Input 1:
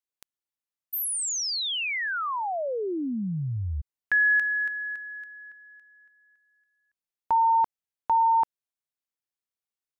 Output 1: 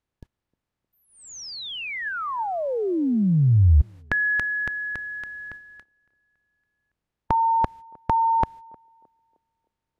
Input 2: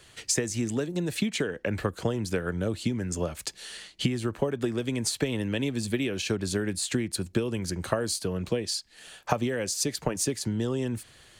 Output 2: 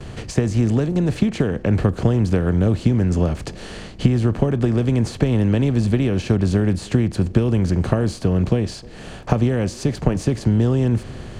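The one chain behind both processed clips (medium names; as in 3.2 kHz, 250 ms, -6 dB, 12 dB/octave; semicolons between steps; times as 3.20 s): spectral levelling over time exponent 0.6; RIAA curve playback; gate -40 dBFS, range -23 dB; on a send: band-passed feedback delay 309 ms, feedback 43%, band-pass 410 Hz, level -22.5 dB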